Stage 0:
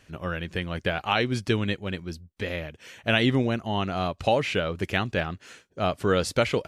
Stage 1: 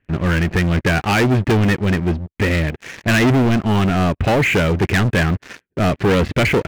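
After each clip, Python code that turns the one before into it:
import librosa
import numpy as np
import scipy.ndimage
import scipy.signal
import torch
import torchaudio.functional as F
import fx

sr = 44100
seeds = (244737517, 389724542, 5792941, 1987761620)

y = scipy.signal.sosfilt(scipy.signal.butter(4, 2200.0, 'lowpass', fs=sr, output='sos'), x)
y = fx.band_shelf(y, sr, hz=830.0, db=-8.5, octaves=1.7)
y = fx.leveller(y, sr, passes=5)
y = y * librosa.db_to_amplitude(2.0)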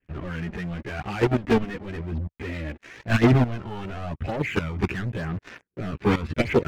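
y = fx.high_shelf(x, sr, hz=5600.0, db=-9.0)
y = fx.level_steps(y, sr, step_db=14)
y = fx.chorus_voices(y, sr, voices=2, hz=0.46, base_ms=15, depth_ms=2.5, mix_pct=65)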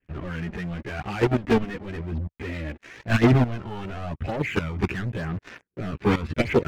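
y = x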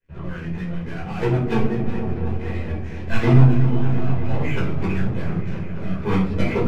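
y = fx.echo_opening(x, sr, ms=236, hz=400, octaves=1, feedback_pct=70, wet_db=-6)
y = fx.room_shoebox(y, sr, seeds[0], volume_m3=460.0, walls='furnished', distance_m=4.9)
y = fx.echo_warbled(y, sr, ms=370, feedback_pct=49, rate_hz=2.8, cents=81, wet_db=-14)
y = y * librosa.db_to_amplitude(-9.0)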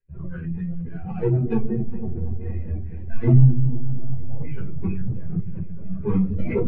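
y = fx.spec_expand(x, sr, power=1.7)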